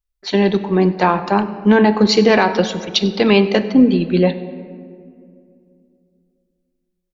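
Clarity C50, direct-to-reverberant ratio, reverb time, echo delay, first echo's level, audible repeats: 12.5 dB, 10.5 dB, 2.4 s, 97 ms, -22.0 dB, 1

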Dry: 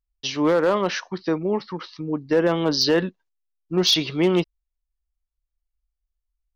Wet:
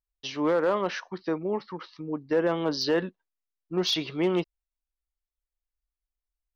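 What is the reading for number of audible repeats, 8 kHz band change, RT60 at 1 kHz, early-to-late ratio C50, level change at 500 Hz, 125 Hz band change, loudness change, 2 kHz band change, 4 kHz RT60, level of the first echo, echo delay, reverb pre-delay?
no echo, -10.5 dB, no reverb, no reverb, -5.0 dB, -8.0 dB, -6.0 dB, -5.5 dB, no reverb, no echo, no echo, no reverb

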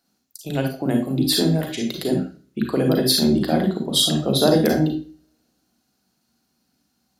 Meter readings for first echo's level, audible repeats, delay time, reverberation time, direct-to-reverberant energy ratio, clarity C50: no echo, no echo, no echo, 0.40 s, 3.0 dB, 5.5 dB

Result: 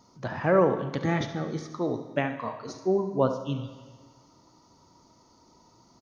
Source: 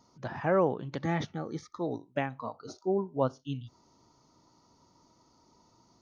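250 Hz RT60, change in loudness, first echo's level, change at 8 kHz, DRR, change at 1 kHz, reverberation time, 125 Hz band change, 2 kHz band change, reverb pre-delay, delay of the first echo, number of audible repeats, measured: 1.4 s, +4.5 dB, -12.0 dB, no reading, 7.5 dB, +3.5 dB, 1.4 s, +4.5 dB, +5.0 dB, 25 ms, 70 ms, 1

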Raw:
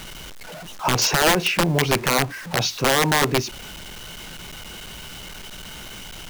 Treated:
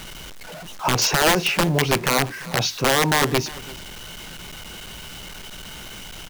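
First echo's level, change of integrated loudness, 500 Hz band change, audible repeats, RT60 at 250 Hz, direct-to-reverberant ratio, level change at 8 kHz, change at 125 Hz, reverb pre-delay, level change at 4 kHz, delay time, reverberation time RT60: -19.5 dB, 0.0 dB, 0.0 dB, 1, no reverb, no reverb, 0.0 dB, 0.0 dB, no reverb, 0.0 dB, 342 ms, no reverb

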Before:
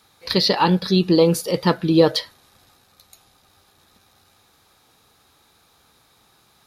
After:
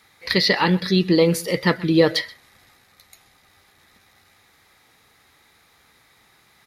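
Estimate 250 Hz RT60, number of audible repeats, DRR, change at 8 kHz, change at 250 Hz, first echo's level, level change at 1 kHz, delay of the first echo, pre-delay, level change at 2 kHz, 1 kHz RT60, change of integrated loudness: no reverb, 1, no reverb, -1.0 dB, -1.0 dB, -21.5 dB, -3.5 dB, 128 ms, no reverb, +7.0 dB, no reverb, -1.0 dB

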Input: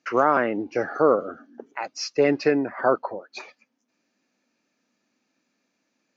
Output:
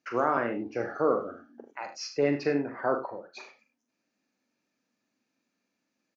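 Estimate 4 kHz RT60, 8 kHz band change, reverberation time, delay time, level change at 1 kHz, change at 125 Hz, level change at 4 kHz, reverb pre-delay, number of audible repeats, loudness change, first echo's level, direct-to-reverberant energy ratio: no reverb, no reading, no reverb, 42 ms, -6.5 dB, -2.5 dB, -7.0 dB, no reverb, 2, -6.5 dB, -7.0 dB, no reverb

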